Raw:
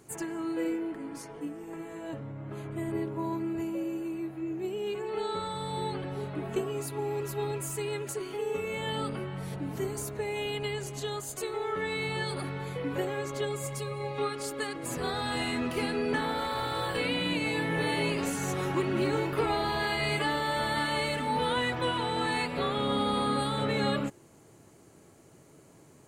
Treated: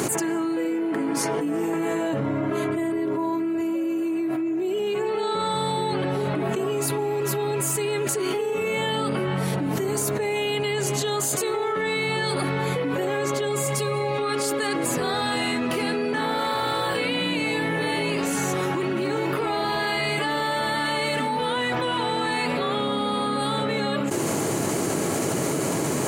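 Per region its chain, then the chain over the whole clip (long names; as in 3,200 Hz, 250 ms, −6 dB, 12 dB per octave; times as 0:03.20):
0:02.24–0:04.79: high-pass filter 50 Hz + comb filter 3 ms, depth 84%
whole clip: high-pass filter 150 Hz 12 dB per octave; envelope flattener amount 100%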